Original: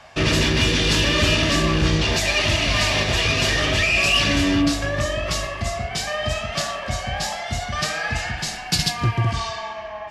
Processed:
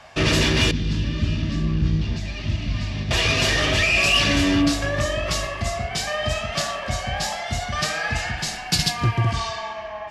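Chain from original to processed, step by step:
0:00.71–0:03.11: drawn EQ curve 220 Hz 0 dB, 480 Hz −17 dB, 5,000 Hz −15 dB, 11,000 Hz −28 dB

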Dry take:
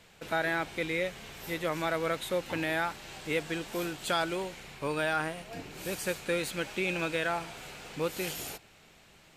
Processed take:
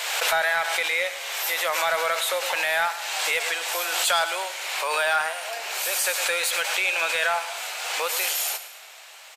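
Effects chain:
inverse Chebyshev high-pass filter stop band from 240 Hz, stop band 50 dB
in parallel at +0.5 dB: downward compressor, threshold −41 dBFS, peak gain reduction 14.5 dB
on the sum: high-shelf EQ 4,700 Hz +5 dB
on a send: repeating echo 107 ms, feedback 46%, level −14 dB
on the sum: soft clipping −17.5 dBFS, distortion −24 dB
background raised ahead of every attack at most 30 dB per second
level +6.5 dB

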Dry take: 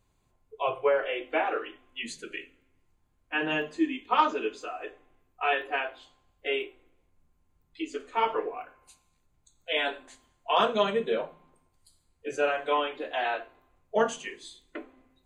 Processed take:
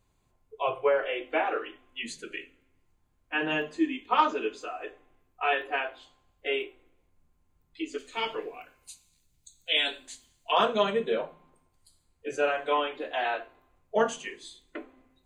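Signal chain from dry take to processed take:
0:07.98–0:10.52: drawn EQ curve 170 Hz 0 dB, 1,100 Hz −9 dB, 4,100 Hz +10 dB

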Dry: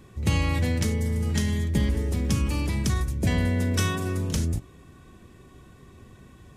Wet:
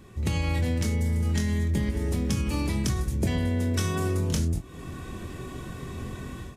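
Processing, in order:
automatic gain control gain up to 12 dB
double-tracking delay 24 ms −6.5 dB
downward compressor 6 to 1, threshold −24 dBFS, peak gain reduction 15 dB

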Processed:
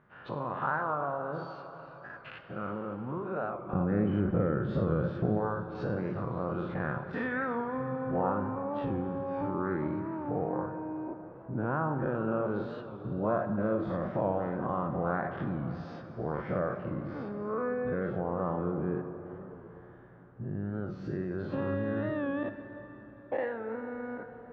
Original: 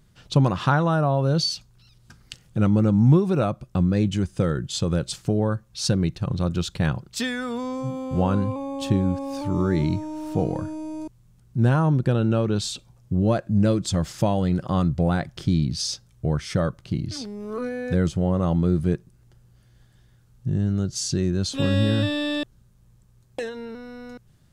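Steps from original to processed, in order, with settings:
every bin's largest magnitude spread in time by 120 ms
low-pass filter 1,600 Hz 24 dB per octave
downward compressor 2 to 1, threshold −39 dBFS, peak gain reduction 16 dB
high-pass filter 1,100 Hz 6 dB per octave, from 0:03.73 170 Hz, from 0:05.38 450 Hz
convolution reverb RT60 4.2 s, pre-delay 8 ms, DRR 7 dB
wow of a warped record 45 rpm, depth 100 cents
level +5.5 dB

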